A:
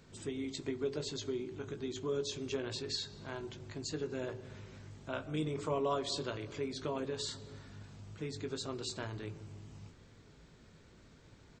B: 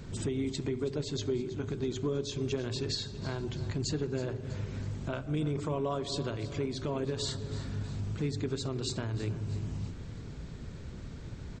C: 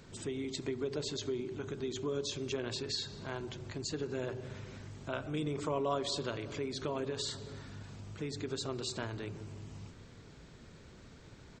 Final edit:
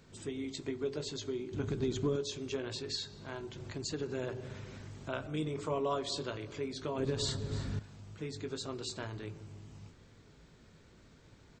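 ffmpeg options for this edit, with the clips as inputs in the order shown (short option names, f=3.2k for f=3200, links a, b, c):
-filter_complex "[1:a]asplit=2[a][b];[0:a]asplit=4[c][d][e][f];[c]atrim=end=1.532[g];[a]atrim=start=1.528:end=2.162[h];[d]atrim=start=2.158:end=3.562[i];[2:a]atrim=start=3.558:end=5.272[j];[e]atrim=start=5.268:end=6.982[k];[b]atrim=start=6.978:end=7.792[l];[f]atrim=start=7.788[m];[g][h]acrossfade=d=0.004:c1=hsin:c2=hsin[n];[n][i]acrossfade=d=0.004:c1=hsin:c2=hsin[o];[o][j]acrossfade=d=0.004:c1=hsin:c2=hsin[p];[p][k]acrossfade=d=0.004:c1=hsin:c2=hsin[q];[q][l]acrossfade=d=0.004:c1=hsin:c2=hsin[r];[r][m]acrossfade=d=0.004:c1=hsin:c2=hsin"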